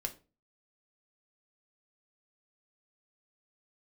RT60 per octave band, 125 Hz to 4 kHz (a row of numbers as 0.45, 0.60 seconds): 0.50, 0.45, 0.35, 0.30, 0.25, 0.25 seconds